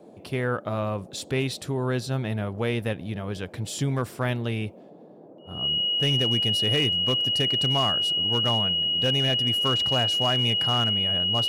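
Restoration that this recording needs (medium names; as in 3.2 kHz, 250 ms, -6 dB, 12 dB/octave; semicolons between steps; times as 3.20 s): clip repair -16.5 dBFS; band-stop 2.9 kHz, Q 30; noise print and reduce 26 dB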